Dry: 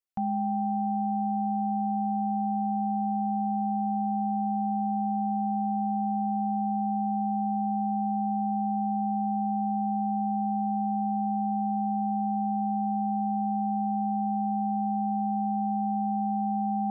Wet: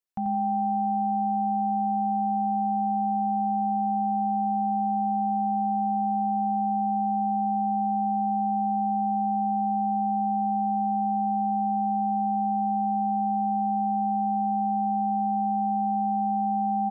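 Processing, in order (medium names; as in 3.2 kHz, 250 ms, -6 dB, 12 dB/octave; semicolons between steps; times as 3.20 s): feedback delay 88 ms, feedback 30%, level -7 dB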